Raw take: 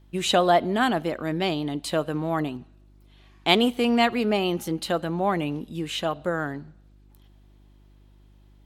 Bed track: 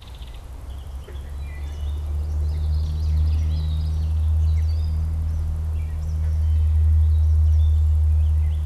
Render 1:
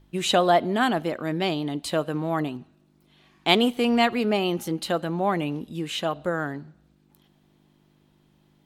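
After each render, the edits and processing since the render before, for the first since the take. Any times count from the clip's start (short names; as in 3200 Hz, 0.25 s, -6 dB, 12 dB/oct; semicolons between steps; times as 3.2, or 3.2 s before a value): de-hum 50 Hz, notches 2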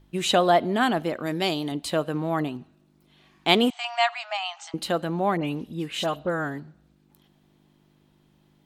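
1.26–1.72 tone controls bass -3 dB, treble +9 dB; 3.7–4.74 brick-wall FIR band-pass 630–8400 Hz; 5.37–6.6 dispersion highs, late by 60 ms, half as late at 2900 Hz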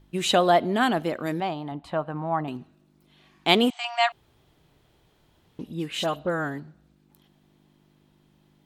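1.4–2.48 EQ curve 110 Hz 0 dB, 460 Hz -9 dB, 820 Hz +5 dB, 5700 Hz -20 dB, 13000 Hz -25 dB; 4.12–5.59 room tone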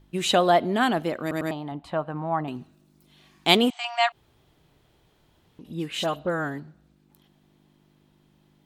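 1.21 stutter in place 0.10 s, 3 plays; 2.57–3.57 tone controls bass +2 dB, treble +7 dB; 4.09–5.65 compressor 2:1, threshold -48 dBFS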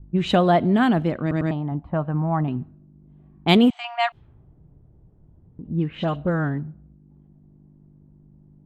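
low-pass opened by the level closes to 610 Hz, open at -20 dBFS; tone controls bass +14 dB, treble -10 dB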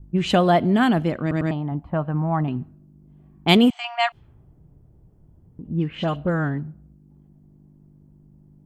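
high shelf 3500 Hz +7.5 dB; notch 3800 Hz, Q 11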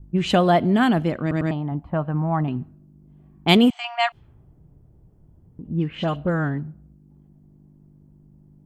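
nothing audible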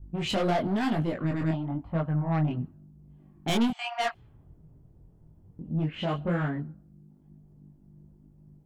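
soft clip -19.5 dBFS, distortion -8 dB; chorus voices 2, 1 Hz, delay 22 ms, depth 4 ms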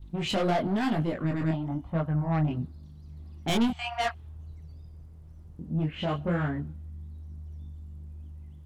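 add bed track -25 dB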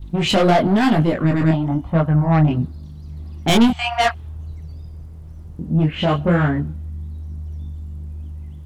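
gain +11.5 dB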